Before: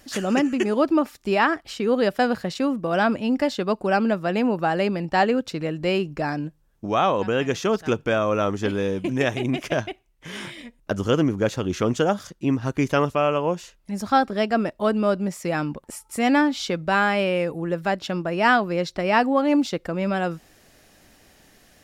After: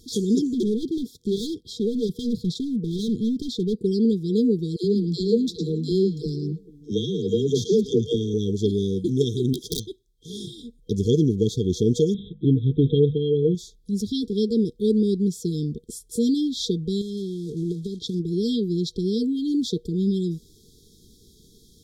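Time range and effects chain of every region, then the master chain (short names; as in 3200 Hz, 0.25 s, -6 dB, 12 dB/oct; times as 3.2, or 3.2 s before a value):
0.54–3.85 HPF 88 Hz + tone controls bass +5 dB, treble -3 dB + overloaded stage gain 23 dB
4.76–8.34 dispersion lows, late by 86 ms, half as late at 440 Hz + delay with a stepping band-pass 0.109 s, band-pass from 5200 Hz, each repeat -1.4 oct, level -6 dB
9.53–10.3 low shelf 400 Hz -7 dB + wrapped overs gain 17.5 dB
12.14–13.55 notches 50/100/150/200/250 Hz + comb 6.5 ms, depth 74% + careless resampling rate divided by 6×, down none, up filtered
17.01–18.2 block floating point 5-bit + LPF 8100 Hz + compressor, threshold -24 dBFS
whole clip: high shelf 6100 Hz -7 dB; FFT band-reject 480–3200 Hz; bell 290 Hz -8 dB 0.3 oct; gain +4.5 dB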